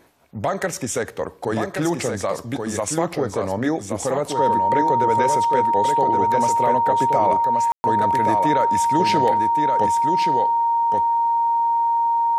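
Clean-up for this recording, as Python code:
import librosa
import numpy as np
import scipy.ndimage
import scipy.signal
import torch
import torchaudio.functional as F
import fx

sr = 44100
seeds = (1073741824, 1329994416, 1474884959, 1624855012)

y = fx.notch(x, sr, hz=930.0, q=30.0)
y = fx.fix_ambience(y, sr, seeds[0], print_start_s=0.0, print_end_s=0.5, start_s=7.72, end_s=7.84)
y = fx.fix_echo_inverse(y, sr, delay_ms=1125, level_db=-5.0)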